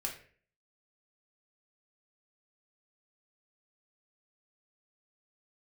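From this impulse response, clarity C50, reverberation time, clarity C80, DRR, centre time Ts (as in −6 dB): 8.5 dB, 0.45 s, 12.5 dB, −1.0 dB, 21 ms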